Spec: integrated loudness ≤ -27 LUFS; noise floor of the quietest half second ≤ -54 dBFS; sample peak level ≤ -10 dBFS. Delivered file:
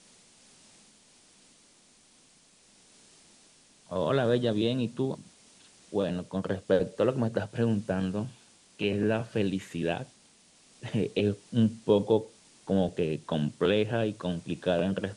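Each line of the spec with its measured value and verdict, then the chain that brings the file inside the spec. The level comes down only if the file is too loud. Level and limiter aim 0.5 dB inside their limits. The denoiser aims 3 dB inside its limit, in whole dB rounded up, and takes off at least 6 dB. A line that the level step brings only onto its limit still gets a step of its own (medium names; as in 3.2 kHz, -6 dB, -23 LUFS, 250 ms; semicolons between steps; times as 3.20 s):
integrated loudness -29.5 LUFS: pass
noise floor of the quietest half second -61 dBFS: pass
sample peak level -11.5 dBFS: pass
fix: none needed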